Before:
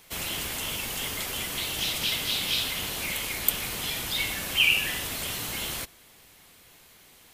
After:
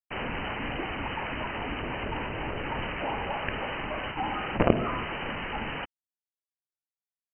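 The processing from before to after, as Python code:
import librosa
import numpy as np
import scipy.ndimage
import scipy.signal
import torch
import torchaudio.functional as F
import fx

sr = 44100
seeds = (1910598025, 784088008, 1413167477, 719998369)

y = fx.highpass(x, sr, hz=130.0, slope=6)
y = fx.peak_eq(y, sr, hz=230.0, db=-9.0, octaves=2.1)
y = fx.quant_companded(y, sr, bits=2)
y = fx.freq_invert(y, sr, carrier_hz=3000)
y = y * librosa.db_to_amplitude(-1.0)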